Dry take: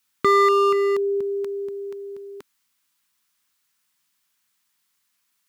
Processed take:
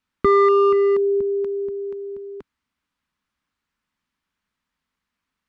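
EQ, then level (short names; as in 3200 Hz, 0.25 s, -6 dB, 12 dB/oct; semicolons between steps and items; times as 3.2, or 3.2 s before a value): RIAA curve playback; bell 120 Hz -14 dB 0.43 oct; high shelf 4700 Hz -8 dB; 0.0 dB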